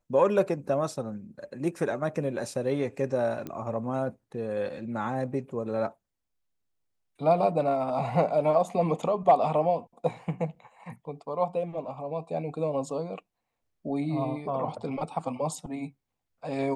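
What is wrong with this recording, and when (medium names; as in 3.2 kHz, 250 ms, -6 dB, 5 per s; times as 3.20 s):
3.47 s: pop -23 dBFS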